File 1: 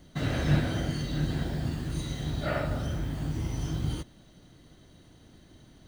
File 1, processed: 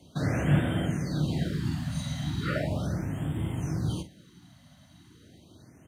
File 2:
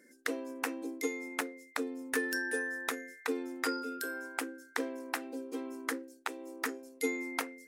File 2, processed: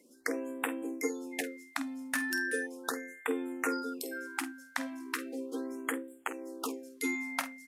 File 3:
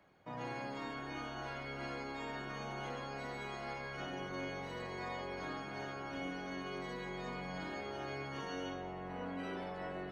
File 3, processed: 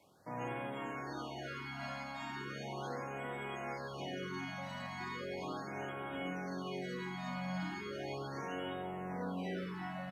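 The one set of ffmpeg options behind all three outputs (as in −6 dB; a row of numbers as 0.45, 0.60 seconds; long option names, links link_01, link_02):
-filter_complex "[0:a]highpass=frequency=71:width=0.5412,highpass=frequency=71:width=1.3066,adynamicequalizer=threshold=0.002:dfrequency=180:dqfactor=7.7:tfrequency=180:tqfactor=7.7:attack=5:release=100:ratio=0.375:range=3:mode=boostabove:tftype=bell,acontrast=71,acrusher=bits=10:mix=0:aa=0.000001,asplit=2[link_01][link_02];[link_02]adelay=49,volume=-12dB[link_03];[link_01][link_03]amix=inputs=2:normalize=0,aresample=32000,aresample=44100,afftfilt=real='re*(1-between(b*sr/1024,370*pow(5300/370,0.5+0.5*sin(2*PI*0.37*pts/sr))/1.41,370*pow(5300/370,0.5+0.5*sin(2*PI*0.37*pts/sr))*1.41))':imag='im*(1-between(b*sr/1024,370*pow(5300/370,0.5+0.5*sin(2*PI*0.37*pts/sr))/1.41,370*pow(5300/370,0.5+0.5*sin(2*PI*0.37*pts/sr))*1.41))':win_size=1024:overlap=0.75,volume=-5.5dB"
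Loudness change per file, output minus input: +1.0, +0.5, +1.0 LU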